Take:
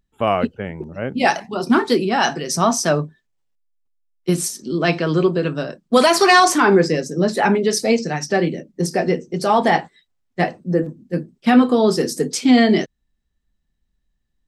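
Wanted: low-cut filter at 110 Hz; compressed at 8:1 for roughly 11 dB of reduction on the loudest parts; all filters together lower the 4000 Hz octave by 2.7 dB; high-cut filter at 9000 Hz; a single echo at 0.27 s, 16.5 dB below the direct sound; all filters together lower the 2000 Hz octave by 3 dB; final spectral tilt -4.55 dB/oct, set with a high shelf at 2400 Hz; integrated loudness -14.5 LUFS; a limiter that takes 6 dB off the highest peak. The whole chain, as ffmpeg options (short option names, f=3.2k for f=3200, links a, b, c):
-af "highpass=110,lowpass=9k,equalizer=f=2k:t=o:g=-4.5,highshelf=f=2.4k:g=4.5,equalizer=f=4k:t=o:g=-6.5,acompressor=threshold=-20dB:ratio=8,alimiter=limit=-16dB:level=0:latency=1,aecho=1:1:270:0.15,volume=12dB"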